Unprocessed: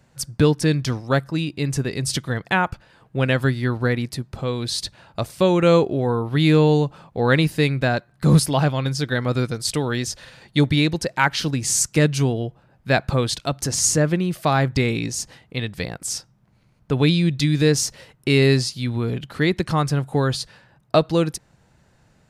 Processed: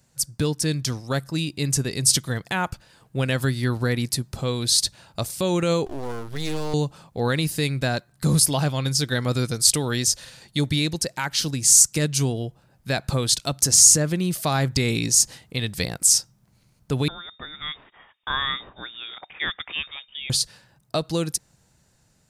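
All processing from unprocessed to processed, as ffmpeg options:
-filter_complex "[0:a]asettb=1/sr,asplit=3[a][b][c];[a]atrim=end=5.864[d];[b]atrim=start=5.86:end=6.74,asetpts=PTS-STARTPTS,afade=t=in:d=0.004:c=qsin,afade=t=out:st=0.876:d=0.004:c=qsin,acompressor=threshold=-24dB:ratio=1.5:attack=3.2:release=140:knee=1:detection=peak,aeval=exprs='max(val(0),0)':c=same[e];[c]atrim=start=6.736[f];[d][e]acrossfade=d=0.004:c1=hsin:c2=qsin[g];[g][f]acrossfade=d=0.004:c1=qsin:c2=hsin,asettb=1/sr,asplit=3[h][i][j];[h]atrim=end=17.084[k];[i]atrim=start=17.08:end=20.3,asetpts=PTS-STARTPTS,afade=t=in:d=0.004:c=qsin,afade=t=out:st=3.216:d=0.004:c=qsin,aderivative,acontrast=39,lowpass=f=3.2k:t=q:w=0.5098,lowpass=f=3.2k:t=q:w=0.6013,lowpass=f=3.2k:t=q:w=0.9,lowpass=f=3.2k:t=q:w=2.563,afreqshift=-3800[l];[j]atrim=start=20.296[m];[k][l]acrossfade=d=0.004:c1=hsin:c2=qsin[n];[n][m]acrossfade=d=0.004:c1=qsin:c2=hsin,dynaudnorm=f=140:g=13:m=11.5dB,alimiter=limit=-6dB:level=0:latency=1:release=125,bass=f=250:g=2,treble=f=4k:g=14,volume=-8dB"

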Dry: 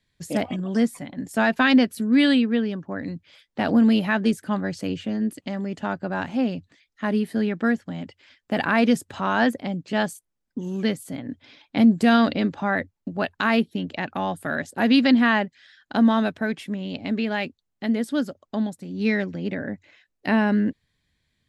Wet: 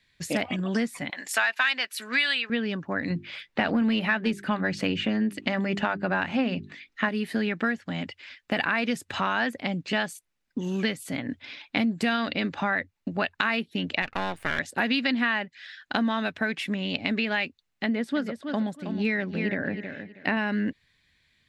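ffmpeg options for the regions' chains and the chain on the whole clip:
-filter_complex "[0:a]asettb=1/sr,asplit=3[a][b][c];[a]atrim=end=1.104[d];[b]atrim=start=1.1:end=2.5,asetpts=PTS-STARTPTS,afade=t=in:d=0.004:c=qsin,afade=t=out:st=1.396:d=0.004:c=qsin,highpass=990,acontrast=63[e];[c]atrim=start=2.496[f];[d][e]acrossfade=d=0.004:c1=hsin:c2=qsin[g];[g][f]acrossfade=d=0.004:c1=qsin:c2=hsin,asettb=1/sr,asplit=3[h][i][j];[h]atrim=end=3.104[k];[i]atrim=start=3.1:end=7.09,asetpts=PTS-STARTPTS,afade=t=in:d=0.004:c=qsin,afade=t=out:st=3.986:d=0.004:c=qsin,bass=f=250:g=1,treble=f=4k:g=-7,bandreject=f=50:t=h:w=6,bandreject=f=100:t=h:w=6,bandreject=f=150:t=h:w=6,bandreject=f=200:t=h:w=6,bandreject=f=250:t=h:w=6,bandreject=f=300:t=h:w=6,bandreject=f=350:t=h:w=6,bandreject=f=400:t=h:w=6,acontrast=47[l];[j]atrim=start=7.086[m];[k][l]acrossfade=d=0.004:c1=hsin:c2=qsin[n];[n][m]acrossfade=d=0.004:c1=qsin:c2=hsin,asettb=1/sr,asplit=3[o][p][q];[o]atrim=end=14.024[r];[p]atrim=start=14.02:end=14.59,asetpts=PTS-STARTPTS,afade=t=in:d=0.004:c=qsin,afade=t=out:st=0.566:d=0.004:c=qsin,highshelf=f=6.9k:g=-5.5,aeval=exprs='max(val(0),0)':c=same[s];[q]atrim=start=14.586[t];[r][s]acrossfade=d=0.004:c1=hsin:c2=qsin[u];[u][t]acrossfade=d=0.004:c1=qsin:c2=hsin,asettb=1/sr,asplit=3[v][w][x];[v]atrim=end=17.844[y];[w]atrim=start=17.84:end=20.37,asetpts=PTS-STARTPTS,afade=t=in:d=0.004:c=qsin,afade=t=out:st=2.526:d=0.004:c=qsin,highpass=62,highshelf=f=2.9k:g=-11,aecho=1:1:319|638|957:0.299|0.0657|0.0144,atrim=end_sample=111573[z];[x]atrim=start=20.366[aa];[y][z]acrossfade=d=0.004:c1=hsin:c2=qsin[ab];[ab][aa]acrossfade=d=0.004:c1=qsin:c2=hsin,equalizer=f=2.5k:t=o:w=2.2:g=11,bandreject=f=3.2k:w=19,acompressor=threshold=-23dB:ratio=5"

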